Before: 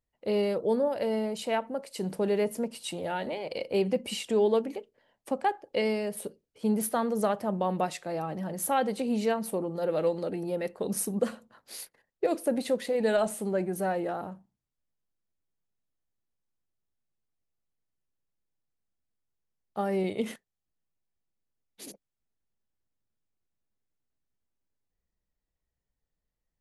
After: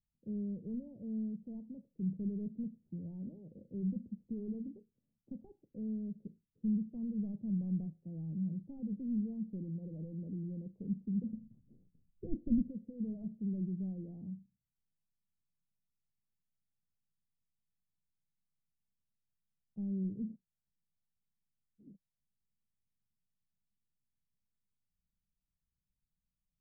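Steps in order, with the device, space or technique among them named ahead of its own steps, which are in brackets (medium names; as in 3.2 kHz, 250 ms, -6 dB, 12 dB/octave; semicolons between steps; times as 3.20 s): overdriven synthesiser ladder filter (saturation -25 dBFS, distortion -12 dB; four-pole ladder low-pass 230 Hz, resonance 40%); 11.33–12.69 s: tilt EQ -4 dB/octave; trim +4 dB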